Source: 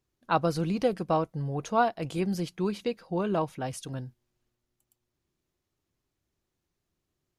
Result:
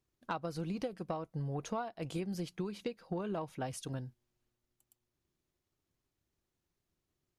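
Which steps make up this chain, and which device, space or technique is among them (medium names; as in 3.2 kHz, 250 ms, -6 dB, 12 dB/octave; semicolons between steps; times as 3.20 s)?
drum-bus smash (transient shaper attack +5 dB, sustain 0 dB; compression 12:1, threshold -29 dBFS, peak gain reduction 14 dB; saturation -20 dBFS, distortion -25 dB); trim -4 dB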